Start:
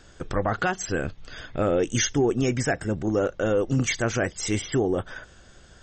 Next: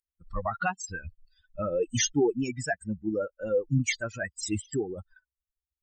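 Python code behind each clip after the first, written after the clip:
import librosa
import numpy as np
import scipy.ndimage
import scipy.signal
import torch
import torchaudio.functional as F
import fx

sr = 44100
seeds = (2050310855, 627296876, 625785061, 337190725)

y = fx.bin_expand(x, sr, power=3.0)
y = y * librosa.db_to_amplitude(1.5)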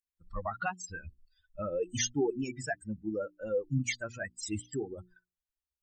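y = fx.hum_notches(x, sr, base_hz=60, count=6)
y = y * librosa.db_to_amplitude(-5.0)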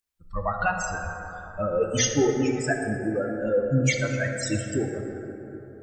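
y = fx.rev_plate(x, sr, seeds[0], rt60_s=3.9, hf_ratio=0.3, predelay_ms=0, drr_db=2.0)
y = y * librosa.db_to_amplitude(7.5)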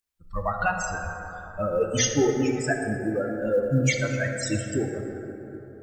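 y = fx.quant_float(x, sr, bits=6)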